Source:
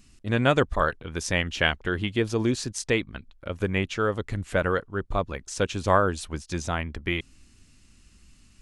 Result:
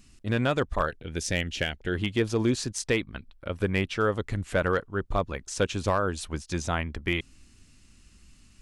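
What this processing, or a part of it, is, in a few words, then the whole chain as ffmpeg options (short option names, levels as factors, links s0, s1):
limiter into clipper: -filter_complex "[0:a]asettb=1/sr,asplit=3[s0][s1][s2];[s0]atrim=end=2.874[s3];[s1]atrim=start=2.87:end=4.04,asetpts=PTS-STARTPTS,afade=t=in:d=0.004:c=qsin,afade=t=out:st=1.166:d=0.004:c=qsin,bandreject=f=6700:w=6.3[s4];[s2]atrim=start=4.036[s5];[s3][s4]acrossfade=d=0.004:c1=hsin:c2=qsin[s6];[s6][s5]acrossfade=d=0.004:c1=qsin:c2=hsin,alimiter=limit=0.237:level=0:latency=1:release=268,asoftclip=type=hard:threshold=0.178,asettb=1/sr,asplit=3[s7][s8][s9];[s7]atrim=end=0.864[s10];[s8]atrim=start=0.86:end=1.95,asetpts=PTS-STARTPTS,afade=t=in:d=0.004:c=qsin,afade=t=out:st=1.086:d=0.004:c=qsin,equalizer=f=1100:t=o:w=0.57:g=-14.5[s11];[s9]atrim=start=1.946[s12];[s10][s11]acrossfade=d=0.004:c1=hsin:c2=qsin[s13];[s13][s12]acrossfade=d=0.004:c1=qsin:c2=hsin"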